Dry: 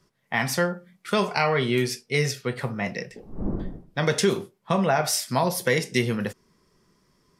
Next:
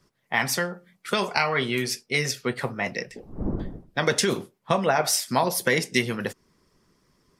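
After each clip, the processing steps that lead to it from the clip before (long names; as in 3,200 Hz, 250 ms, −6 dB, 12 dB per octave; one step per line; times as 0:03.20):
harmonic and percussive parts rebalanced percussive +9 dB
level −5.5 dB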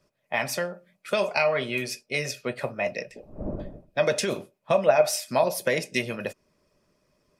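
hollow resonant body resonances 600/2,500 Hz, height 16 dB, ringing for 45 ms
level −5.5 dB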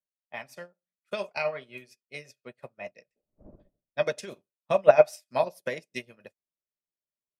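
expander for the loud parts 2.5 to 1, over −43 dBFS
level +4 dB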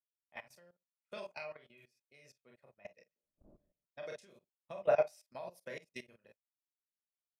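ambience of single reflections 29 ms −8 dB, 46 ms −7 dB
output level in coarse steps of 18 dB
level −7.5 dB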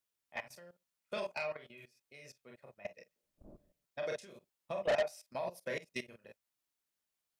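soft clipping −34.5 dBFS, distortion −4 dB
level +7.5 dB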